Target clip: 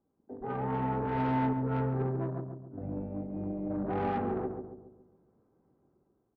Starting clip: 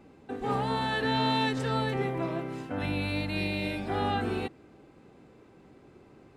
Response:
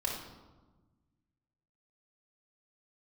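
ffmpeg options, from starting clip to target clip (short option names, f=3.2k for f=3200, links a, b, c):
-filter_complex "[0:a]asettb=1/sr,asplit=3[a][b][c];[a]atrim=end=1.534[d];[b]atrim=start=1.53:end=3.7,asetpts=PTS-STARTPTS,afade=t=in:d=0.004:c=qsin,afade=t=out:st=2.166:d=0.004:c=qsin,agate=range=-33dB:threshold=-25dB:ratio=3:detection=peak[e];[c]atrim=start=3.696[f];[d][e]acrossfade=d=0.004:c1=hsin:c2=qsin[g];[g][f]acrossfade=d=0.004:c1=qsin:c2=hsin,lowpass=f=1.3k:w=0.5412,lowpass=f=1.3k:w=1.3066,afwtdn=0.0158,dynaudnorm=f=190:g=7:m=8.5dB,asoftclip=type=tanh:threshold=-21dB,aeval=exprs='0.0891*(cos(1*acos(clip(val(0)/0.0891,-1,1)))-cos(1*PI/2))+0.00178*(cos(3*acos(clip(val(0)/0.0891,-1,1)))-cos(3*PI/2))':c=same,asplit=2[h][i];[i]adelay=138,lowpass=f=900:p=1,volume=-4.5dB,asplit=2[j][k];[k]adelay=138,lowpass=f=900:p=1,volume=0.51,asplit=2[l][m];[m]adelay=138,lowpass=f=900:p=1,volume=0.51,asplit=2[n][o];[o]adelay=138,lowpass=f=900:p=1,volume=0.51,asplit=2[p][q];[q]adelay=138,lowpass=f=900:p=1,volume=0.51,asplit=2[r][s];[s]adelay=138,lowpass=f=900:p=1,volume=0.51,asplit=2[t][u];[u]adelay=138,lowpass=f=900:p=1,volume=0.51[v];[h][j][l][n][p][r][t][v]amix=inputs=8:normalize=0,volume=-7dB"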